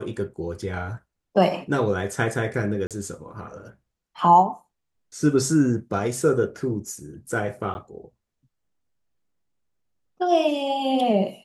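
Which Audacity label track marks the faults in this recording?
2.870000	2.910000	drop-out 37 ms
7.740000	7.750000	drop-out 10 ms

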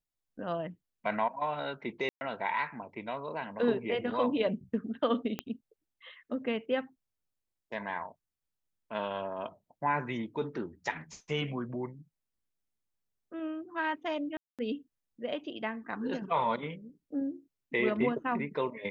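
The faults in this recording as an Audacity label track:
2.090000	2.210000	drop-out 120 ms
5.390000	5.390000	click −19 dBFS
14.370000	14.590000	drop-out 217 ms

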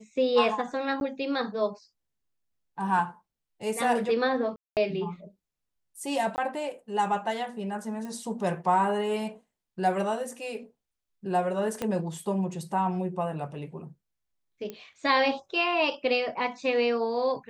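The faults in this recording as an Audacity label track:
1.000000	1.010000	drop-out
4.560000	4.770000	drop-out 208 ms
6.360000	6.380000	drop-out 19 ms
8.050000	8.050000	click −27 dBFS
11.820000	11.820000	click −16 dBFS
14.700000	14.700000	click −23 dBFS

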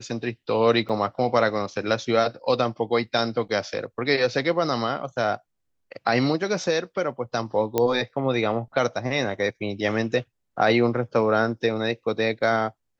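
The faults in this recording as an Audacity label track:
0.890000	0.900000	drop-out 5.7 ms
7.780000	7.780000	click −8 dBFS

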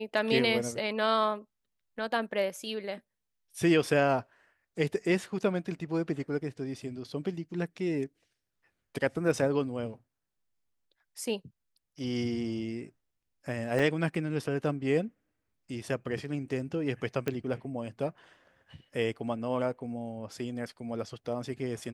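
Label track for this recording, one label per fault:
13.790000	13.790000	drop-out 4.7 ms
17.280000	17.280000	click −17 dBFS

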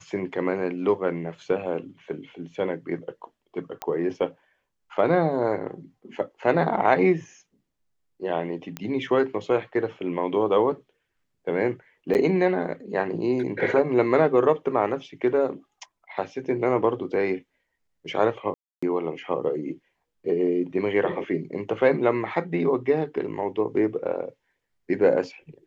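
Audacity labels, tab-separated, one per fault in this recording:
3.820000	3.820000	click −16 dBFS
8.770000	8.770000	click −16 dBFS
12.140000	12.150000	drop-out 9.4 ms
18.540000	18.820000	drop-out 285 ms

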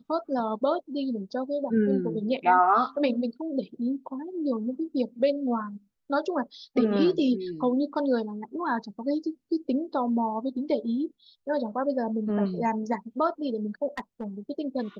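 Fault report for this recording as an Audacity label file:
13.970000	14.240000	clipping −27.5 dBFS

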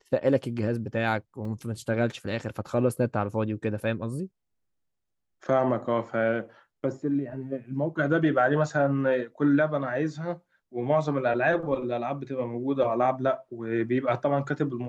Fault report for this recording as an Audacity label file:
1.450000	1.450000	drop-out 2.8 ms

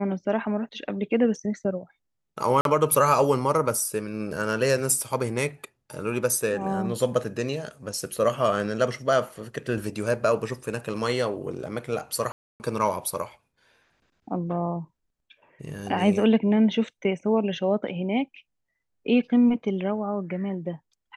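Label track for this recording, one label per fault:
2.610000	2.650000	drop-out 42 ms
12.320000	12.600000	drop-out 279 ms

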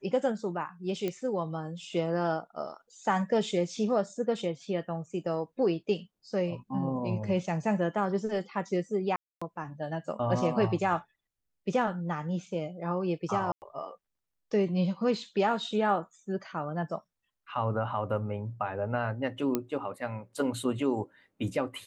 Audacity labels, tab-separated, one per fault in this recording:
1.080000	1.080000	click −19 dBFS
9.160000	9.410000	drop-out 255 ms
13.520000	13.620000	drop-out 99 ms
19.550000	19.550000	click −14 dBFS

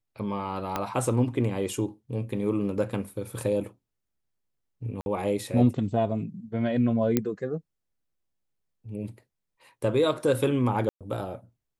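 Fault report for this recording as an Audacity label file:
0.760000	0.760000	click −13 dBFS
5.010000	5.060000	drop-out 51 ms
7.170000	7.170000	click −9 dBFS
10.890000	11.010000	drop-out 117 ms

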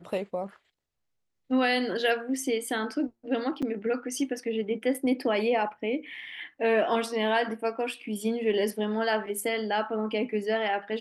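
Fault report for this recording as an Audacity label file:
3.620000	3.630000	drop-out 5.8 ms

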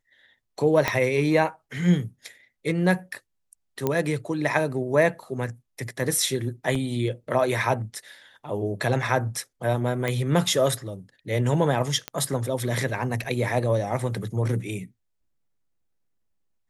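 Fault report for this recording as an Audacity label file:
0.880000	0.880000	click −7 dBFS
3.870000	3.870000	click −11 dBFS
6.750000	6.750000	drop-out 3.7 ms
10.080000	10.080000	click −13 dBFS
12.080000	12.080000	click −13 dBFS
13.240000	13.250000	drop-out 5.7 ms

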